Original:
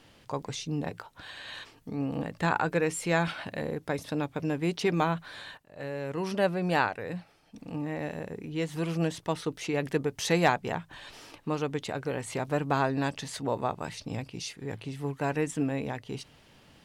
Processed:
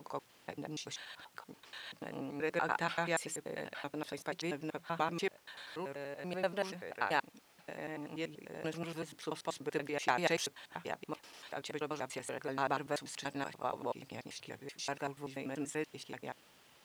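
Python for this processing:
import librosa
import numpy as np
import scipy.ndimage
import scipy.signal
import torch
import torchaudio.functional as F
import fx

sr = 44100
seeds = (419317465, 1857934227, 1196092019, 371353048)

y = fx.block_reorder(x, sr, ms=96.0, group=5)
y = fx.dmg_noise_colour(y, sr, seeds[0], colour='pink', level_db=-60.0)
y = fx.highpass(y, sr, hz=460.0, slope=6)
y = F.gain(torch.from_numpy(y), -5.0).numpy()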